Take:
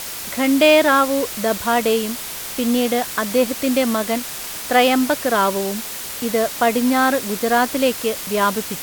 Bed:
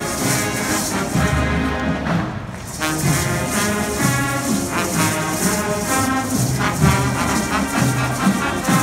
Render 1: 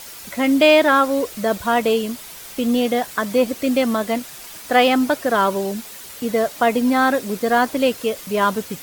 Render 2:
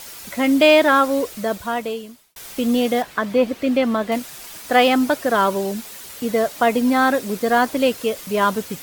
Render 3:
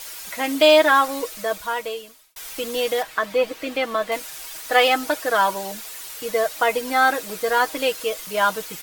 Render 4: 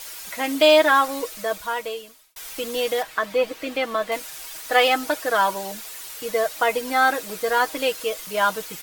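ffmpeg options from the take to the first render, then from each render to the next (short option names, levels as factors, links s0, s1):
-af "afftdn=nr=9:nf=-30"
-filter_complex "[0:a]asettb=1/sr,asplit=3[s0][s1][s2];[s0]atrim=end=3.024[s3];[s1]atrim=start=3.02:end=4.12,asetpts=PTS-STARTPTS,afade=t=in:d=0.004:c=qsin,afade=t=out:st=1.096:d=0.004:c=qsin,acrossover=split=4100[s4][s5];[s5]acompressor=threshold=0.00447:ratio=4:attack=1:release=60[s6];[s4][s6]amix=inputs=2:normalize=0[s7];[s2]atrim=start=4.116[s8];[s3][s7]acrossfade=d=0.004:c1=hsin:c2=qsin[s9];[s9][s8]acrossfade=d=0.004:c1=qsin:c2=hsin,asplit=2[s10][s11];[s10]atrim=end=2.36,asetpts=PTS-STARTPTS,afade=t=out:st=1.16:d=1.2[s12];[s11]atrim=start=2.36,asetpts=PTS-STARTPTS,afade=t=in:d=0.004:c=hsin[s13];[s12][s13]concat=n=2:v=0:a=1"
-af "equalizer=f=160:w=0.52:g=-14,aecho=1:1:6.3:0.63"
-af "volume=0.891"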